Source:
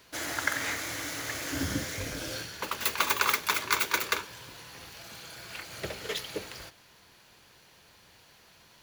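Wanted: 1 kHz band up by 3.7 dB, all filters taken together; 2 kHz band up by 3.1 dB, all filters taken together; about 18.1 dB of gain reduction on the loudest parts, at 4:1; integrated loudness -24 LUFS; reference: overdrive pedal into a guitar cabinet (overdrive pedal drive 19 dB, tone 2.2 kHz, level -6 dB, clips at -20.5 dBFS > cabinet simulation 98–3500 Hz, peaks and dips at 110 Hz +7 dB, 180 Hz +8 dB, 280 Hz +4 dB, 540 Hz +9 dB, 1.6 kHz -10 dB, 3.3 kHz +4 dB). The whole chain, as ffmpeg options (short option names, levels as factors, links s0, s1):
-filter_complex "[0:a]equalizer=f=1000:t=o:g=3.5,equalizer=f=2000:t=o:g=7,acompressor=threshold=0.01:ratio=4,asplit=2[s0][s1];[s1]highpass=f=720:p=1,volume=8.91,asoftclip=type=tanh:threshold=0.0944[s2];[s0][s2]amix=inputs=2:normalize=0,lowpass=f=2200:p=1,volume=0.501,highpass=98,equalizer=f=110:t=q:w=4:g=7,equalizer=f=180:t=q:w=4:g=8,equalizer=f=280:t=q:w=4:g=4,equalizer=f=540:t=q:w=4:g=9,equalizer=f=1600:t=q:w=4:g=-10,equalizer=f=3300:t=q:w=4:g=4,lowpass=f=3500:w=0.5412,lowpass=f=3500:w=1.3066,volume=3.98"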